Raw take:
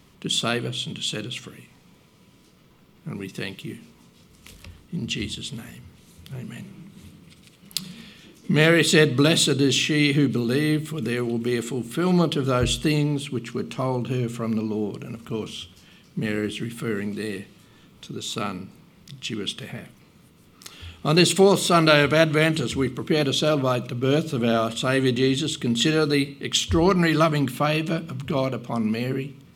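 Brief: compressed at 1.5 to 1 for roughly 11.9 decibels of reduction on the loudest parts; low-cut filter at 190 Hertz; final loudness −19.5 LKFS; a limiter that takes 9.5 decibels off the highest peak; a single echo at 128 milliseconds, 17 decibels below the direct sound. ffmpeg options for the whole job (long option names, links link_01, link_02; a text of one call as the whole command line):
ffmpeg -i in.wav -af "highpass=190,acompressor=threshold=-46dB:ratio=1.5,alimiter=limit=-23dB:level=0:latency=1,aecho=1:1:128:0.141,volume=15.5dB" out.wav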